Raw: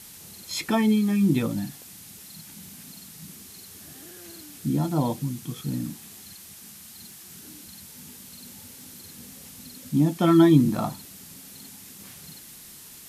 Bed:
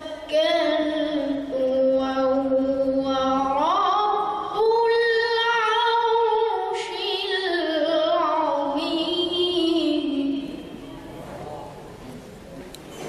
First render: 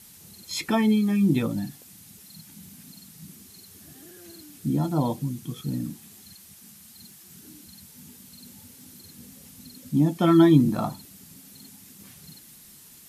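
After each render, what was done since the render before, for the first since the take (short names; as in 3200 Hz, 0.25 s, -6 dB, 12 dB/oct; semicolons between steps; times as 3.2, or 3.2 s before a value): denoiser 6 dB, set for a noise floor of -46 dBFS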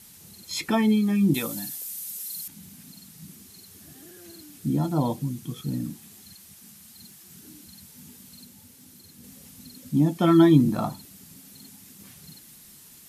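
1.34–2.48 RIAA curve recording; 8.45–9.24 gain -3 dB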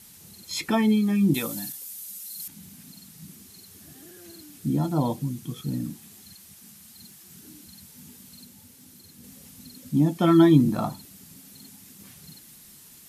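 1.72–2.4 ensemble effect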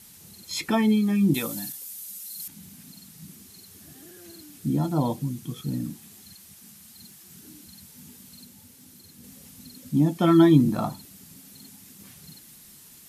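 nothing audible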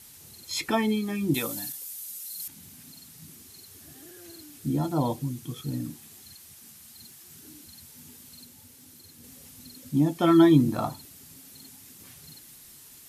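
bell 190 Hz -11.5 dB 0.37 oct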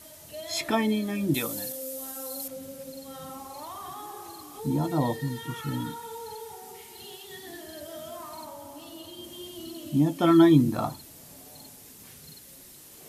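add bed -20 dB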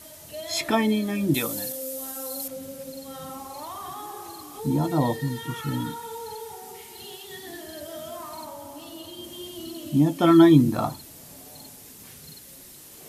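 gain +3 dB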